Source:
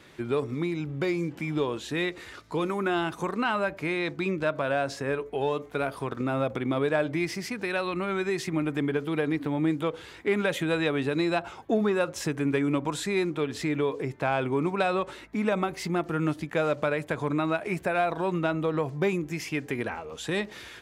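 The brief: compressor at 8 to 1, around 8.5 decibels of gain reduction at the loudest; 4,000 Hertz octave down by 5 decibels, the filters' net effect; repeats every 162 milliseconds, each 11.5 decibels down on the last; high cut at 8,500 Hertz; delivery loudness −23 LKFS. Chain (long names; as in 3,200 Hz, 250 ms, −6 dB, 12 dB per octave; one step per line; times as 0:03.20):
low-pass filter 8,500 Hz
parametric band 4,000 Hz −6 dB
downward compressor 8 to 1, threshold −30 dBFS
repeating echo 162 ms, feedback 27%, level −11.5 dB
level +11.5 dB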